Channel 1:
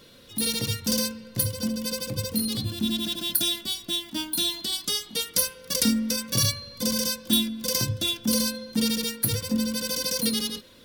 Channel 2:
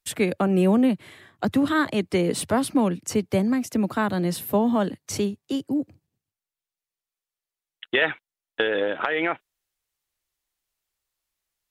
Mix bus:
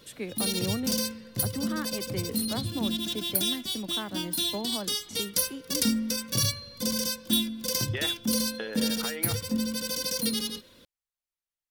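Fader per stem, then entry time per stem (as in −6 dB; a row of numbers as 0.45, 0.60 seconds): −3.0, −13.5 decibels; 0.00, 0.00 seconds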